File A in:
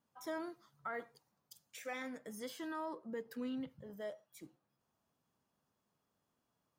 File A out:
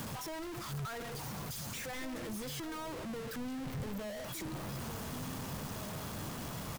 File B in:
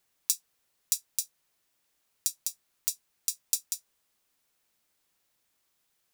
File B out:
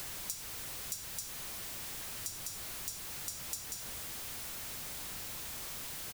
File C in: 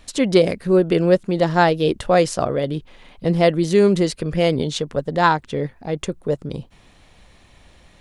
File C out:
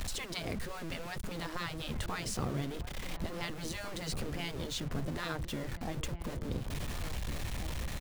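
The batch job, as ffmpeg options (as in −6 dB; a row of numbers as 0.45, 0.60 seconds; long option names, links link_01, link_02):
-filter_complex "[0:a]aeval=exprs='val(0)+0.5*0.0501*sgn(val(0))':channel_layout=same,afftfilt=real='re*lt(hypot(re,im),0.501)':imag='im*lt(hypot(re,im),0.501)':win_size=1024:overlap=0.75,aeval=exprs='val(0)*gte(abs(val(0)),0.0178)':channel_layout=same,acrossover=split=160[link_01][link_02];[link_02]acompressor=threshold=-55dB:ratio=1.5[link_03];[link_01][link_03]amix=inputs=2:normalize=0,asplit=2[link_04][link_05];[link_05]adelay=1749,volume=-8dB,highshelf=frequency=4000:gain=-39.4[link_06];[link_04][link_06]amix=inputs=2:normalize=0,volume=-2.5dB"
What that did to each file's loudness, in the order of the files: +4.0, −7.0, −19.5 LU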